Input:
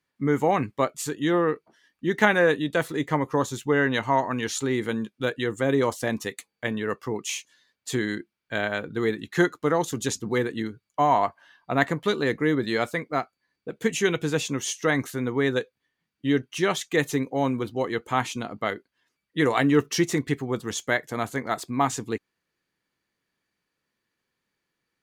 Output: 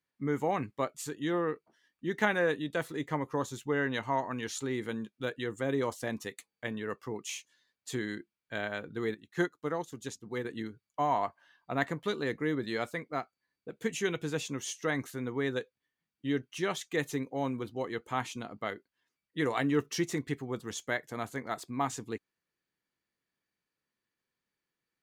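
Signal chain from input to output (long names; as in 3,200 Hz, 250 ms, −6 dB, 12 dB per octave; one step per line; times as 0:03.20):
0:09.14–0:10.45: expander for the loud parts 1.5 to 1, over −40 dBFS
level −8.5 dB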